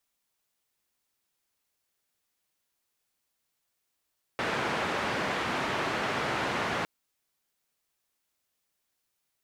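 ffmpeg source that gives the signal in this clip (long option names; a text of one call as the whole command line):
ffmpeg -f lavfi -i "anoisesrc=color=white:duration=2.46:sample_rate=44100:seed=1,highpass=frequency=110,lowpass=frequency=1700,volume=-14.7dB" out.wav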